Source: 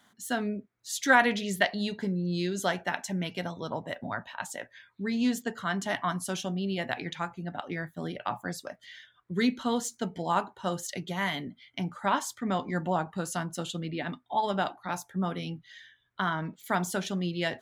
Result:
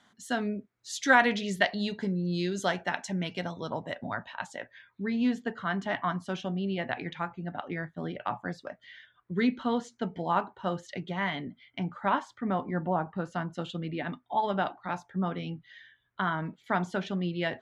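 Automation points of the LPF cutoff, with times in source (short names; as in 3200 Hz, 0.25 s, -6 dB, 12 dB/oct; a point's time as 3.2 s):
3.9 s 6700 Hz
5.04 s 2900 Hz
11.98 s 2900 Hz
12.87 s 1400 Hz
13.63 s 3000 Hz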